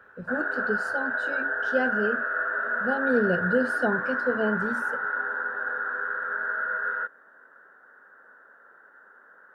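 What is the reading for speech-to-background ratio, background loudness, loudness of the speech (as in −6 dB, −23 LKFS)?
−1.5 dB, −28.0 LKFS, −29.5 LKFS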